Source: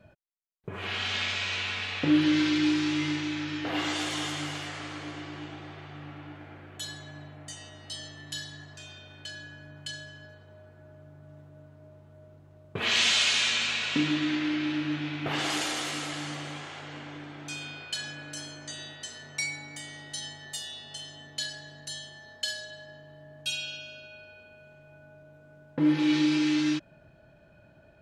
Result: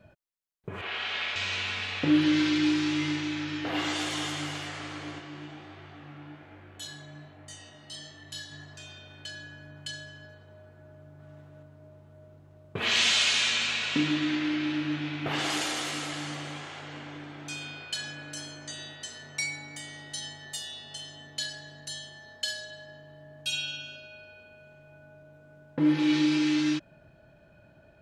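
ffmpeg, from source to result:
-filter_complex "[0:a]asettb=1/sr,asplit=3[s0][s1][s2];[s0]atrim=end=0.814[s3];[s1]atrim=start=0.81:end=1.36,asetpts=PTS-STARTPTS,afade=t=in:d=0.004:c=qsin,afade=t=out:st=0.546:d=0.004:c=qsin,acrossover=split=330 3900:gain=0.158 1 0.2[s4][s5][s6];[s4][s5][s6]amix=inputs=3:normalize=0[s7];[s2]atrim=start=1.356[s8];[s3][s7]acrossfade=d=0.004:c1=hsin:c2=qsin[s9];[s9][s8]acrossfade=d=0.004:c1=qsin:c2=hsin,asplit=3[s10][s11][s12];[s10]afade=t=out:st=5.18:d=0.02[s13];[s11]flanger=delay=22.5:depth=5:speed=1.2,afade=t=in:st=5.18:d=0.02,afade=t=out:st=8.5:d=0.02[s14];[s12]afade=t=in:st=8.5:d=0.02[s15];[s13][s14][s15]amix=inputs=3:normalize=0,asettb=1/sr,asplit=3[s16][s17][s18];[s16]atrim=end=11.194[s19];[s17]atrim=start=11.19:end=11.63,asetpts=PTS-STARTPTS,afade=t=in:d=0.004:c=qsin,afade=t=out:st=0.436:d=0.004:c=qsin,equalizer=f=2400:t=o:w=2.9:g=5[s20];[s18]atrim=start=11.626[s21];[s19][s20]acrossfade=d=0.004:c1=hsin:c2=qsin[s22];[s22][s21]acrossfade=d=0.004:c1=qsin:c2=hsin,asettb=1/sr,asplit=3[s23][s24][s25];[s23]atrim=end=23.524[s26];[s24]atrim=start=23.52:end=23.96,asetpts=PTS-STARTPTS,afade=t=in:d=0.004:c=qsin,afade=t=out:st=0.436:d=0.004:c=qsin,aecho=1:1:7.4:0.6,atrim=end_sample=19404[s27];[s25]atrim=start=23.956[s28];[s26][s27]acrossfade=d=0.004:c1=hsin:c2=qsin[s29];[s29][s28]acrossfade=d=0.004:c1=qsin:c2=hsin"

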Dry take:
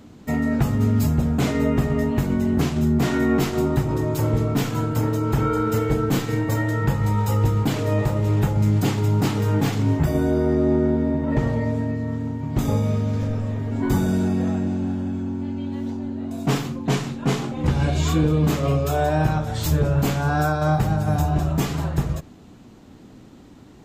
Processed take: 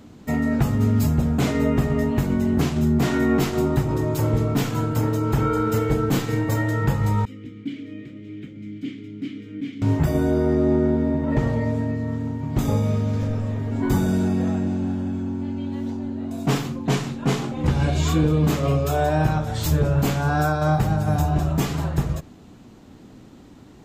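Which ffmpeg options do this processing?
-filter_complex "[0:a]asettb=1/sr,asplit=3[s0][s1][s2];[s0]atrim=end=7.254[s3];[s1]atrim=start=7.25:end=9.82,asetpts=PTS-STARTPTS,afade=t=in:d=0.004:c=qsin,afade=t=out:st=2.566:d=0.004:c=qsin,asplit=3[s4][s5][s6];[s4]bandpass=f=270:t=q:w=8,volume=1[s7];[s5]bandpass=f=2290:t=q:w=8,volume=0.501[s8];[s6]bandpass=f=3010:t=q:w=8,volume=0.355[s9];[s7][s8][s9]amix=inputs=3:normalize=0[s10];[s2]atrim=start=9.816[s11];[s3][s10]acrossfade=d=0.004:c1=hsin:c2=qsin[s12];[s12][s11]acrossfade=d=0.004:c1=qsin:c2=hsin"

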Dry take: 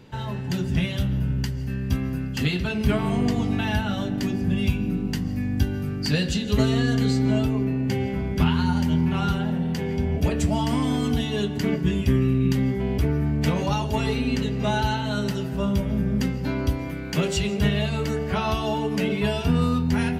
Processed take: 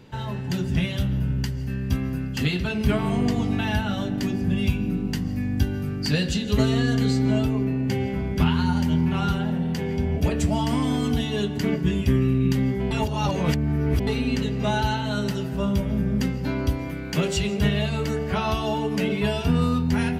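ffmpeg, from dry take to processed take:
-filter_complex "[0:a]asplit=3[s0][s1][s2];[s0]atrim=end=12.912[s3];[s1]atrim=start=12.908:end=14.072,asetpts=PTS-STARTPTS,areverse[s4];[s2]atrim=start=14.068[s5];[s3][s4]acrossfade=d=0.004:c1=hsin:c2=hsin[s6];[s6][s5]acrossfade=d=0.004:c1=hsin:c2=hsin"

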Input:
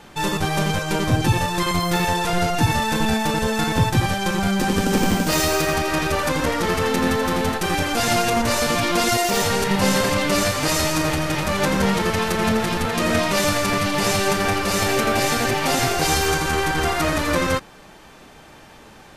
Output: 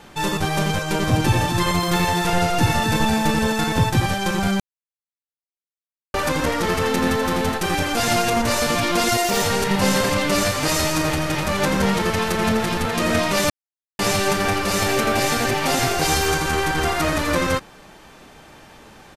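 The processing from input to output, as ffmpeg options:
-filter_complex "[0:a]asplit=3[s0][s1][s2];[s0]afade=t=out:st=1.01:d=0.02[s3];[s1]aecho=1:1:251:0.473,afade=t=in:st=1.01:d=0.02,afade=t=out:st=3.52:d=0.02[s4];[s2]afade=t=in:st=3.52:d=0.02[s5];[s3][s4][s5]amix=inputs=3:normalize=0,asplit=5[s6][s7][s8][s9][s10];[s6]atrim=end=4.6,asetpts=PTS-STARTPTS,afade=t=out:st=4.596:d=0.004:c=hsin[s11];[s7]atrim=start=4.6:end=6.14,asetpts=PTS-STARTPTS,volume=0[s12];[s8]atrim=start=6.14:end=13.5,asetpts=PTS-STARTPTS,afade=t=in:d=0.004:c=hsin,afade=t=out:st=7.356:d=0.004:c=hsin[s13];[s9]atrim=start=13.5:end=13.99,asetpts=PTS-STARTPTS,volume=0[s14];[s10]atrim=start=13.99,asetpts=PTS-STARTPTS,afade=t=in:d=0.004:c=hsin[s15];[s11][s12][s13][s14][s15]concat=n=5:v=0:a=1"

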